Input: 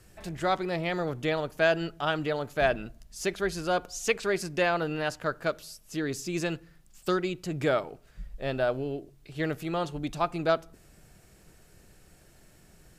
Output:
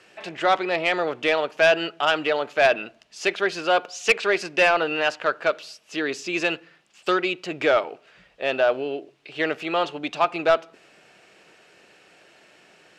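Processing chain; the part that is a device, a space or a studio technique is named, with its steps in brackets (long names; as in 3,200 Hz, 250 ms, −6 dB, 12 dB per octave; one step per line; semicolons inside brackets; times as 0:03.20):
intercom (band-pass filter 420–4,300 Hz; parametric band 2,700 Hz +7 dB 0.52 octaves; soft clipping −17.5 dBFS, distortion −15 dB)
level +9 dB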